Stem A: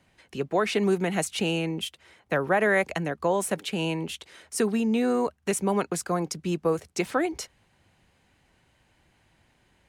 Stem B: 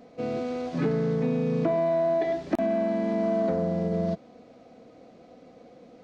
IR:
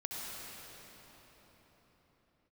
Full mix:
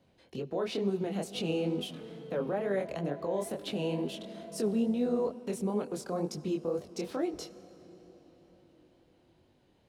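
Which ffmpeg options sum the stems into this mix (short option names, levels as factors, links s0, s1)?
-filter_complex "[0:a]equalizer=f=125:t=o:w=1:g=4,equalizer=f=250:t=o:w=1:g=5,equalizer=f=500:t=o:w=1:g=8,equalizer=f=2000:t=o:w=1:g=-7,equalizer=f=4000:t=o:w=1:g=5,equalizer=f=8000:t=o:w=1:g=-6,alimiter=limit=0.133:level=0:latency=1:release=117,volume=0.596,asplit=2[s0][s1];[s1]volume=0.15[s2];[1:a]acompressor=threshold=0.0447:ratio=6,adelay=1150,volume=0.224[s3];[2:a]atrim=start_sample=2205[s4];[s2][s4]afir=irnorm=-1:irlink=0[s5];[s0][s3][s5]amix=inputs=3:normalize=0,flanger=delay=20:depth=6.8:speed=2.2"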